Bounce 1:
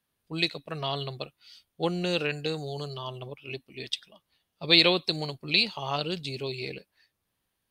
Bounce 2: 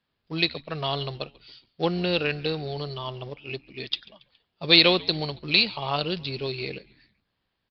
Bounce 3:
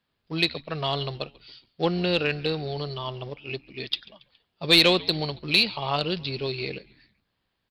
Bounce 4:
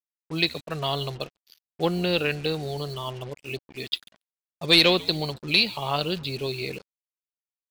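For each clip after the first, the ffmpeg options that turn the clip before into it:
-filter_complex "[0:a]aresample=11025,acrusher=bits=5:mode=log:mix=0:aa=0.000001,aresample=44100,asplit=4[a][b][c][d];[b]adelay=139,afreqshift=-86,volume=-23.5dB[e];[c]adelay=278,afreqshift=-172,volume=-29.3dB[f];[d]adelay=417,afreqshift=-258,volume=-35.2dB[g];[a][e][f][g]amix=inputs=4:normalize=0,volume=3dB"
-af "acontrast=50,volume=-5dB"
-af "afftdn=nr=19:nf=-45,acrusher=bits=6:mix=0:aa=0.5"

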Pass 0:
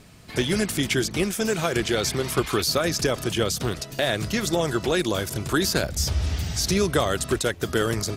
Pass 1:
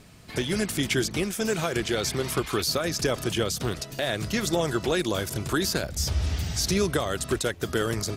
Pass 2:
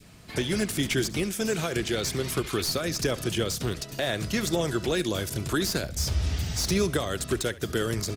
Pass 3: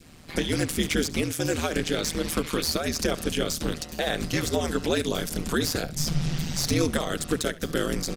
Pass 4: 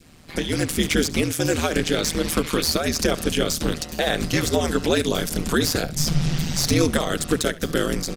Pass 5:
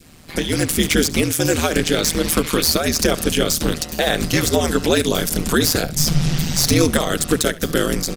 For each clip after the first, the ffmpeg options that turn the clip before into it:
-af "alimiter=limit=-11.5dB:level=0:latency=1:release=389,volume=-1.5dB"
-filter_complex "[0:a]adynamicequalizer=threshold=0.00794:dfrequency=910:dqfactor=0.94:tfrequency=910:tqfactor=0.94:attack=5:release=100:ratio=0.375:range=3:mode=cutabove:tftype=bell,acrossover=split=580|2000[a][b][c];[c]aeval=exprs='clip(val(0),-1,0.0376)':c=same[d];[a][b][d]amix=inputs=3:normalize=0,aecho=1:1:70:0.112"
-af "aeval=exprs='val(0)*sin(2*PI*79*n/s)':c=same,volume=4dB"
-af "dynaudnorm=f=240:g=5:m=5dB"
-af "highshelf=f=9.8k:g=7.5,volume=3.5dB"

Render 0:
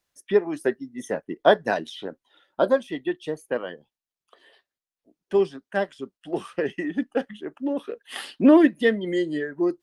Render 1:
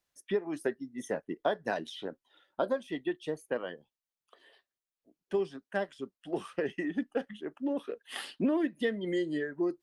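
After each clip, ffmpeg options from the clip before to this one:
-af "acompressor=threshold=-21dB:ratio=6,volume=-5dB"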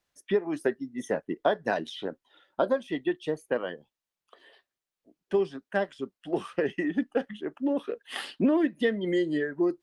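-af "highshelf=f=6.9k:g=-7,volume=5dB"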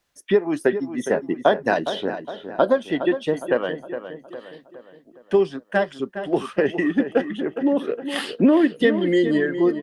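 -filter_complex "[0:a]asplit=2[a][b];[b]adelay=412,lowpass=f=2.8k:p=1,volume=-10dB,asplit=2[c][d];[d]adelay=412,lowpass=f=2.8k:p=1,volume=0.49,asplit=2[e][f];[f]adelay=412,lowpass=f=2.8k:p=1,volume=0.49,asplit=2[g][h];[h]adelay=412,lowpass=f=2.8k:p=1,volume=0.49,asplit=2[i][j];[j]adelay=412,lowpass=f=2.8k:p=1,volume=0.49[k];[a][c][e][g][i][k]amix=inputs=6:normalize=0,volume=7.5dB"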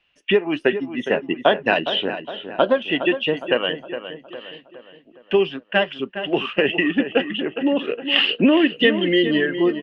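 -af "lowpass=f=2.8k:t=q:w=9.9"

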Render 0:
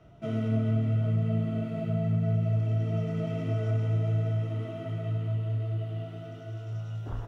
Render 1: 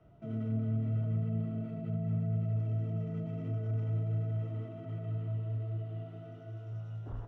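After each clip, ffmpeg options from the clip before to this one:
-filter_complex "[0:a]highshelf=f=2.5k:g=-11.5,acrossover=split=350[a][b];[b]alimiter=level_in=15dB:limit=-24dB:level=0:latency=1:release=18,volume=-15dB[c];[a][c]amix=inputs=2:normalize=0,volume=-5.5dB"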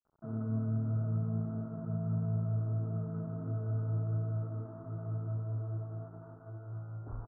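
-af "aeval=exprs='sgn(val(0))*max(abs(val(0))-0.00188,0)':c=same,adynamicsmooth=sensitivity=2:basefreq=1.3k,firequalizer=gain_entry='entry(530,0);entry(1400,10);entry(2200,-26)':delay=0.05:min_phase=1"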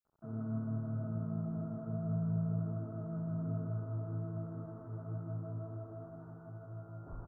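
-af "aecho=1:1:157|314|471|628|785|942|1099|1256:0.708|0.411|0.238|0.138|0.0801|0.0465|0.027|0.0156,volume=-3.5dB"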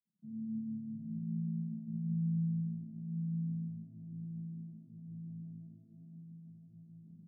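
-af "asuperpass=centerf=190:order=4:qfactor=3.5,volume=5dB"

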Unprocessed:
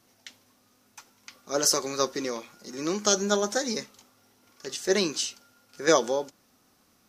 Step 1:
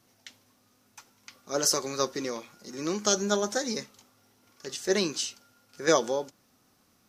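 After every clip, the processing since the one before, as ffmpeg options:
-af "equalizer=f=120:t=o:w=0.98:g=4,volume=-2dB"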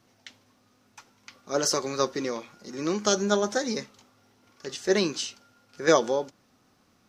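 -af "equalizer=f=13k:t=o:w=1.3:g=-12,volume=3dB"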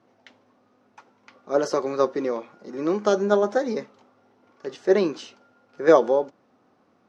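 -af "bandpass=f=540:t=q:w=0.71:csg=0,volume=6dB"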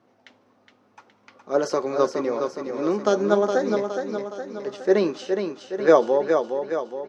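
-af "aecho=1:1:416|832|1248|1664|2080|2496|2912:0.501|0.266|0.141|0.0746|0.0395|0.021|0.0111"

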